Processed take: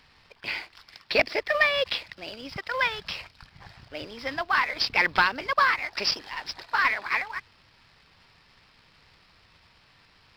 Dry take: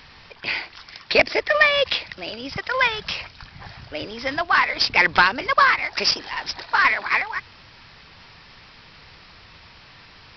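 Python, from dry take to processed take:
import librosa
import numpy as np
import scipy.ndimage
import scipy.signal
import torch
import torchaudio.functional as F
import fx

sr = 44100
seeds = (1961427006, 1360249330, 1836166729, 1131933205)

y = fx.law_mismatch(x, sr, coded='A')
y = F.gain(torch.from_numpy(y), -5.5).numpy()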